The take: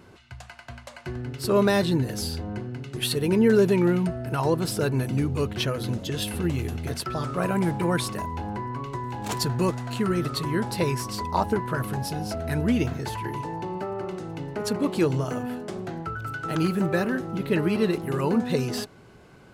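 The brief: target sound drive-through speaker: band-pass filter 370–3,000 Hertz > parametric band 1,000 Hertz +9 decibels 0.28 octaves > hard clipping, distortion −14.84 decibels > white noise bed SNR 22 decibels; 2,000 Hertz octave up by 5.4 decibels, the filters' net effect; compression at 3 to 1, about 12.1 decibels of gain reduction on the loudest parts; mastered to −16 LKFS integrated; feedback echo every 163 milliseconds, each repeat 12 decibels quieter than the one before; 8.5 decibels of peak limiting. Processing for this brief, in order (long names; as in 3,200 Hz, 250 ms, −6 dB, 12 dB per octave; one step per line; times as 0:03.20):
parametric band 2,000 Hz +7.5 dB
downward compressor 3 to 1, threshold −32 dBFS
brickwall limiter −26 dBFS
band-pass filter 370–3,000 Hz
parametric band 1,000 Hz +9 dB 0.28 octaves
repeating echo 163 ms, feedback 25%, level −12 dB
hard clipping −30 dBFS
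white noise bed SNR 22 dB
level +21 dB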